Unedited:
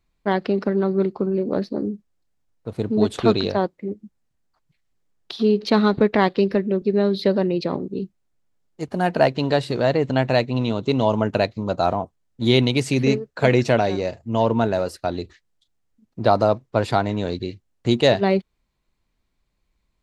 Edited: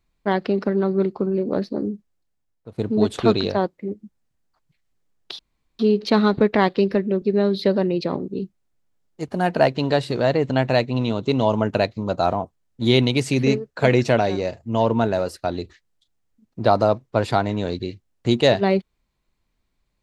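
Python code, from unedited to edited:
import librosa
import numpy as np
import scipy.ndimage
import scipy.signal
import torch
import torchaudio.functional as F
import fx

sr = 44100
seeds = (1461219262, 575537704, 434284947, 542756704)

y = fx.edit(x, sr, fx.fade_out_to(start_s=1.93, length_s=0.85, floor_db=-10.5),
    fx.insert_room_tone(at_s=5.39, length_s=0.4), tone=tone)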